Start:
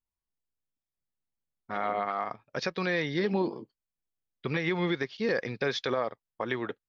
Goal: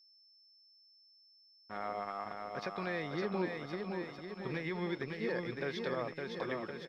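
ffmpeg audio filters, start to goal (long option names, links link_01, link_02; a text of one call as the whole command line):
ffmpeg -i in.wav -filter_complex "[0:a]asplit=2[link_01][link_02];[link_02]aecho=0:1:560|1064|1518|1926|2293:0.631|0.398|0.251|0.158|0.1[link_03];[link_01][link_03]amix=inputs=2:normalize=0,aeval=exprs='sgn(val(0))*max(abs(val(0))-0.00335,0)':channel_layout=same,aemphasis=mode=reproduction:type=50kf,aeval=exprs='val(0)+0.002*sin(2*PI*5300*n/s)':channel_layout=same,volume=-8dB" out.wav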